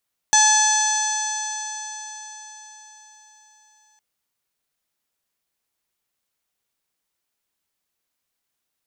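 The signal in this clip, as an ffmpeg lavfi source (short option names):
-f lavfi -i "aevalsrc='0.141*pow(10,-3*t/4.73)*sin(2*PI*856.35*t)+0.0944*pow(10,-3*t/4.73)*sin(2*PI*1714.81*t)+0.0224*pow(10,-3*t/4.73)*sin(2*PI*2577.46*t)+0.0531*pow(10,-3*t/4.73)*sin(2*PI*3446.39*t)+0.0562*pow(10,-3*t/4.73)*sin(2*PI*4323.65*t)+0.0355*pow(10,-3*t/4.73)*sin(2*PI*5211.26*t)+0.2*pow(10,-3*t/4.73)*sin(2*PI*6111.19*t)+0.0562*pow(10,-3*t/4.73)*sin(2*PI*7025.39*t)+0.0531*pow(10,-3*t/4.73)*sin(2*PI*7955.74*t)':d=3.66:s=44100"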